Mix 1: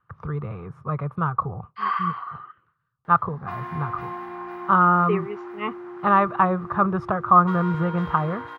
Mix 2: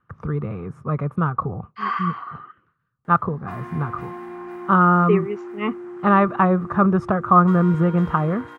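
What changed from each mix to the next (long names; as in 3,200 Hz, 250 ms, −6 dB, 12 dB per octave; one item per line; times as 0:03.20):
speech +4.0 dB
master: add octave-band graphic EQ 125/250/1,000/4,000/8,000 Hz −3/+7/−5/−5/+9 dB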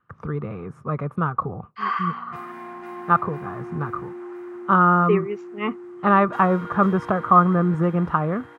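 background: entry −1.15 s
master: add low-shelf EQ 160 Hz −7 dB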